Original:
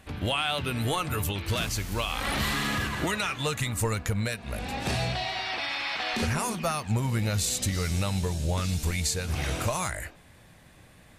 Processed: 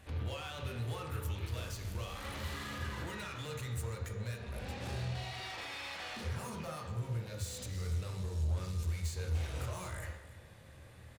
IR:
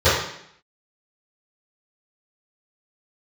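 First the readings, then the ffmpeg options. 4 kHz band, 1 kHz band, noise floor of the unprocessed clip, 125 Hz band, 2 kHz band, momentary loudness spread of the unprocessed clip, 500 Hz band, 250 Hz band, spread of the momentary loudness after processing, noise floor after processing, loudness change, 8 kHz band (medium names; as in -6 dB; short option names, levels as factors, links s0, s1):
-14.5 dB, -14.0 dB, -54 dBFS, -7.5 dB, -14.0 dB, 3 LU, -12.0 dB, -14.5 dB, 6 LU, -55 dBFS, -11.0 dB, -16.0 dB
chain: -filter_complex "[0:a]acompressor=threshold=0.0282:ratio=6,asoftclip=type=tanh:threshold=0.0158,aecho=1:1:290:0.158,asplit=2[s0][s1];[1:a]atrim=start_sample=2205,adelay=14[s2];[s1][s2]afir=irnorm=-1:irlink=0,volume=0.0596[s3];[s0][s3]amix=inputs=2:normalize=0,volume=0.501"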